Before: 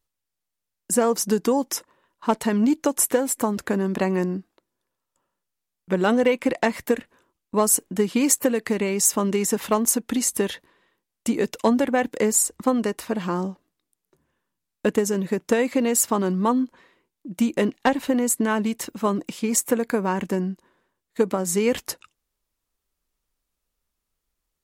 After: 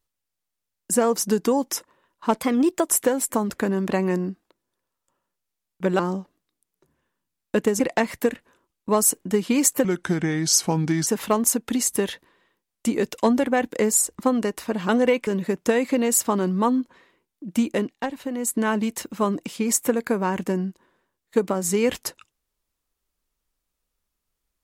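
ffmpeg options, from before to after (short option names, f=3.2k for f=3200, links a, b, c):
-filter_complex "[0:a]asplit=11[a][b][c][d][e][f][g][h][i][j][k];[a]atrim=end=2.414[l];[b]atrim=start=2.41:end=2.96,asetpts=PTS-STARTPTS,asetrate=51156,aresample=44100,atrim=end_sample=20909,asetpts=PTS-STARTPTS[m];[c]atrim=start=2.956:end=6.072[n];[d]atrim=start=13.298:end=15.102[o];[e]atrim=start=6.448:end=8.504[p];[f]atrim=start=8.5:end=9.48,asetpts=PTS-STARTPTS,asetrate=35280,aresample=44100,atrim=end_sample=54022,asetpts=PTS-STARTPTS[q];[g]atrim=start=9.476:end=13.302[r];[h]atrim=start=6.068:end=6.452[s];[i]atrim=start=15.098:end=17.8,asetpts=PTS-STARTPTS,afade=t=out:st=2.402:d=0.3:silence=0.398107[t];[j]atrim=start=17.8:end=18.16,asetpts=PTS-STARTPTS,volume=-8dB[u];[k]atrim=start=18.16,asetpts=PTS-STARTPTS,afade=t=in:d=0.3:silence=0.398107[v];[l][m]acrossfade=d=0.004:c1=hsin:c2=hsin[w];[w][n]acrossfade=d=0.004:c1=hsin:c2=hsin[x];[x][o]acrossfade=d=0.004:c1=hsin:c2=hsin[y];[y][p]acrossfade=d=0.004:c1=hsin:c2=hsin[z];[z][q]acrossfade=d=0.004:c1=hsin:c2=hsin[aa];[aa][r]acrossfade=d=0.004:c1=hsin:c2=hsin[ab];[ab][s]acrossfade=d=0.004:c1=hsin:c2=hsin[ac];[t][u][v]concat=n=3:v=0:a=1[ad];[ac][ad]acrossfade=d=0.004:c1=hsin:c2=hsin"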